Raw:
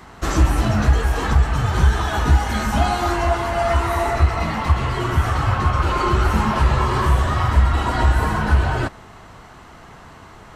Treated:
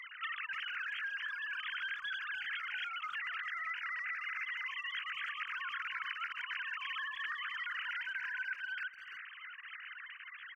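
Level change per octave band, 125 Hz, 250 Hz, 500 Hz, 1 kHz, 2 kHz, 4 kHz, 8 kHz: below −40 dB, below −40 dB, below −40 dB, −23.5 dB, −8.5 dB, −11.0 dB, below −30 dB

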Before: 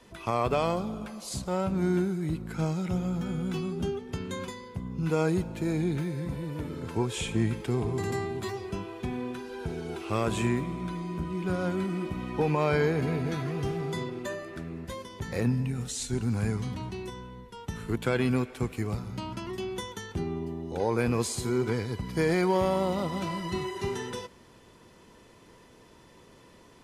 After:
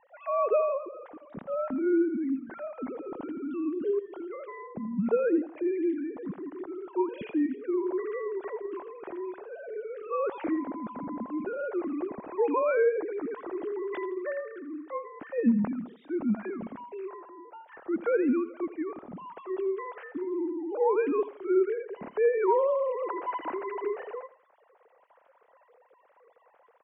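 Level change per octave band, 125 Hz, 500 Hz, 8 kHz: −18.0 dB, +3.0 dB, below −40 dB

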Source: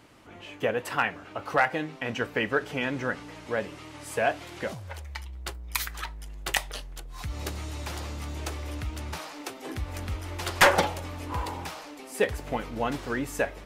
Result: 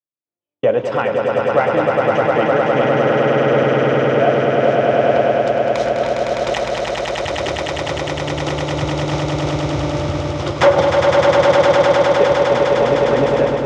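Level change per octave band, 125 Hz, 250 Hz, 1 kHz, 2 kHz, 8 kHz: +14.0, +14.5, +13.0, +7.5, +3.0 decibels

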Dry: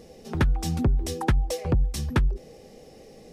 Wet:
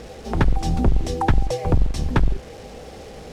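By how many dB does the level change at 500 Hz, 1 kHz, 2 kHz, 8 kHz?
+5.5, +8.0, +3.0, −1.0 decibels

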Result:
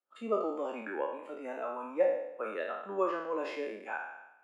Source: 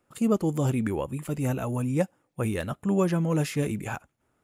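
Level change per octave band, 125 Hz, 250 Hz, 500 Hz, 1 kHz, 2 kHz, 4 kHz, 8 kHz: below −30 dB, −15.5 dB, −2.0 dB, −0.5 dB, −2.0 dB, can't be measured, below −25 dB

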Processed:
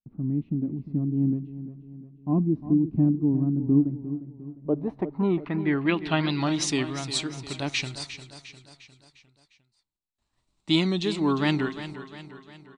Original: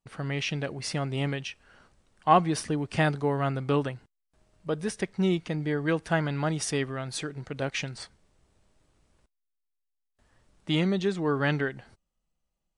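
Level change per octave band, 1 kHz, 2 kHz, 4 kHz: −6.5, −1.5, +4.0 decibels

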